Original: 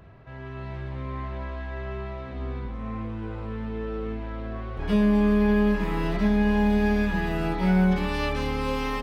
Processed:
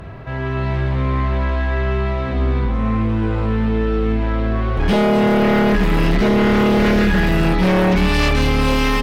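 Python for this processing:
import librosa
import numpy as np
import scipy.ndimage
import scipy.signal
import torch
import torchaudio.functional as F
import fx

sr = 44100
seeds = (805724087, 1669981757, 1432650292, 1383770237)

y = fx.dynamic_eq(x, sr, hz=700.0, q=0.71, threshold_db=-39.0, ratio=4.0, max_db=-7)
y = fx.fold_sine(y, sr, drive_db=12, ceiling_db=-11.0)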